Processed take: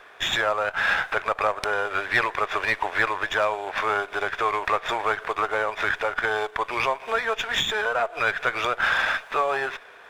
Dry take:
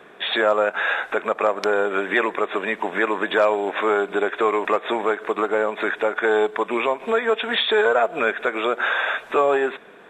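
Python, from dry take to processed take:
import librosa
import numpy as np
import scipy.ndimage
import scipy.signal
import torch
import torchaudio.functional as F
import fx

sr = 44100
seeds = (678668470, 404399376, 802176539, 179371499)

y = fx.rider(x, sr, range_db=4, speed_s=0.5)
y = scipy.signal.sosfilt(scipy.signal.butter(2, 750.0, 'highpass', fs=sr, output='sos'), y)
y = fx.running_max(y, sr, window=3)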